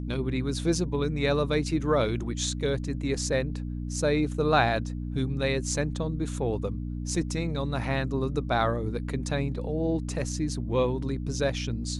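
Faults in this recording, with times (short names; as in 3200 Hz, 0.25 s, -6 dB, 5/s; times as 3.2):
hum 60 Hz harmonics 5 -33 dBFS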